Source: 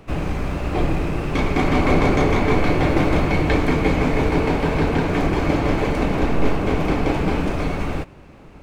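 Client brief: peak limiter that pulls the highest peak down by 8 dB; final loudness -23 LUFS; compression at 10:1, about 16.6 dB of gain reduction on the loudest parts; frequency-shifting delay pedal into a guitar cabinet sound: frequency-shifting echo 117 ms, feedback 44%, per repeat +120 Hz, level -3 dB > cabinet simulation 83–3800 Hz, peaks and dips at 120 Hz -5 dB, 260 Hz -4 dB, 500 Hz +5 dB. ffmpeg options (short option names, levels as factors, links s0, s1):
-filter_complex "[0:a]acompressor=threshold=0.0316:ratio=10,alimiter=level_in=1.41:limit=0.0631:level=0:latency=1,volume=0.708,asplit=7[s0][s1][s2][s3][s4][s5][s6];[s1]adelay=117,afreqshift=120,volume=0.708[s7];[s2]adelay=234,afreqshift=240,volume=0.313[s8];[s3]adelay=351,afreqshift=360,volume=0.136[s9];[s4]adelay=468,afreqshift=480,volume=0.0603[s10];[s5]adelay=585,afreqshift=600,volume=0.0266[s11];[s6]adelay=702,afreqshift=720,volume=0.0116[s12];[s0][s7][s8][s9][s10][s11][s12]amix=inputs=7:normalize=0,highpass=83,equalizer=f=120:t=q:w=4:g=-5,equalizer=f=260:t=q:w=4:g=-4,equalizer=f=500:t=q:w=4:g=5,lowpass=f=3800:w=0.5412,lowpass=f=3800:w=1.3066,volume=3.98"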